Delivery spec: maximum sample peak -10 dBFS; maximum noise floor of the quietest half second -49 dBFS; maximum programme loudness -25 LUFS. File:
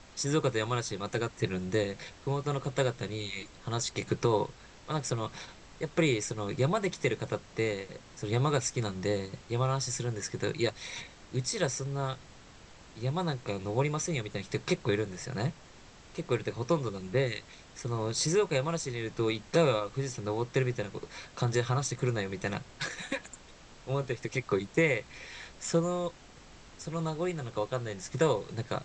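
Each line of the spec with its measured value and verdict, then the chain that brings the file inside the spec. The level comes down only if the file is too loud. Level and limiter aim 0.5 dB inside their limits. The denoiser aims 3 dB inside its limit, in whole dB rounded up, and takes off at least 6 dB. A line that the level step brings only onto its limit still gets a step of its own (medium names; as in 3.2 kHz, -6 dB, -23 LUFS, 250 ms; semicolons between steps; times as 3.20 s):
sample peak -13.0 dBFS: pass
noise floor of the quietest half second -53 dBFS: pass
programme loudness -32.0 LUFS: pass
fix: none needed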